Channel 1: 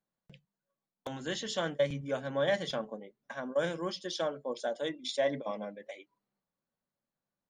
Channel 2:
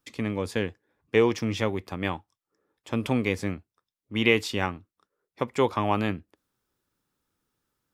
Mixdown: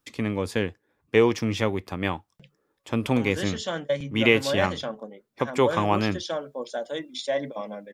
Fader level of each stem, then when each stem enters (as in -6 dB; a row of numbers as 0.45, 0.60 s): +3.0, +2.0 dB; 2.10, 0.00 s